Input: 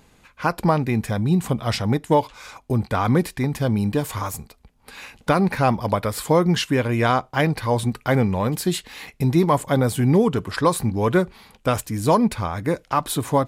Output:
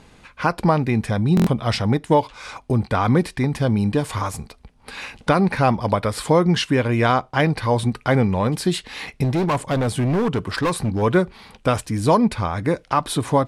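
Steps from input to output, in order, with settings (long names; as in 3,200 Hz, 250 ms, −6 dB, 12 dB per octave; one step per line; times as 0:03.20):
low-pass filter 9,800 Hz 24 dB per octave
in parallel at 0 dB: downward compressor, threshold −32 dBFS, peak gain reduction 18.5 dB
on the sum: parametric band 7,100 Hz −5.5 dB 0.4 octaves
0:09.24–0:11.02: gain into a clipping stage and back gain 16.5 dB
buffer that repeats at 0:01.35, samples 1,024, times 4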